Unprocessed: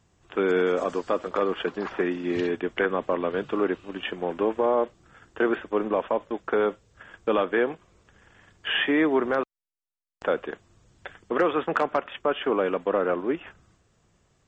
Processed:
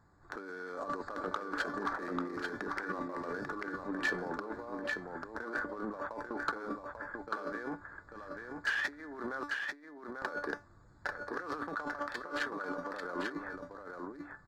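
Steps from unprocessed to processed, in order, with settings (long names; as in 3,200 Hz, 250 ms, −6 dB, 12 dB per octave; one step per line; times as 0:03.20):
adaptive Wiener filter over 15 samples
high-shelf EQ 3,700 Hz −10 dB
tuned comb filter 290 Hz, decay 0.24 s, harmonics all, mix 70%
compressor whose output falls as the input rises −42 dBFS, ratio −1
drawn EQ curve 580 Hz 0 dB, 1,600 Hz +12 dB, 2,900 Hz −5 dB, 4,200 Hz +15 dB
on a send: single-tap delay 842 ms −5 dB
on the sum: soft clipping −23 dBFS, distortion −17 dB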